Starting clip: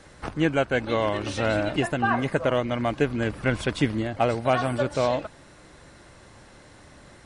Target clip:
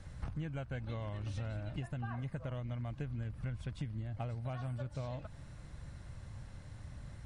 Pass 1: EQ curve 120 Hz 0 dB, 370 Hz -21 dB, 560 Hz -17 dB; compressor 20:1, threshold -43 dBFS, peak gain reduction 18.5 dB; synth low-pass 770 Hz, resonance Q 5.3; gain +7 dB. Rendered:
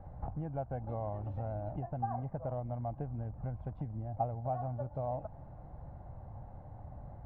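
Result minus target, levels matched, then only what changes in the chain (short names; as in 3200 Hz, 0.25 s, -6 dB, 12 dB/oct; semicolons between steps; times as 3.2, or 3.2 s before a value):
1000 Hz band +8.5 dB
remove: synth low-pass 770 Hz, resonance Q 5.3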